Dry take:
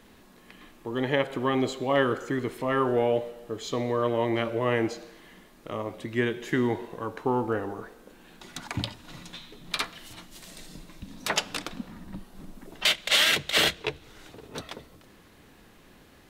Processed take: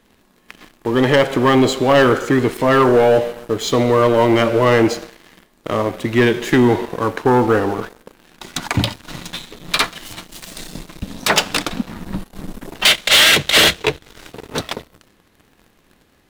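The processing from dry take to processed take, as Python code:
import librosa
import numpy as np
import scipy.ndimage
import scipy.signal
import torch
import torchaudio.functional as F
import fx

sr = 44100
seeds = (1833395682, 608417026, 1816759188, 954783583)

y = fx.leveller(x, sr, passes=3)
y = F.gain(torch.from_numpy(y), 3.5).numpy()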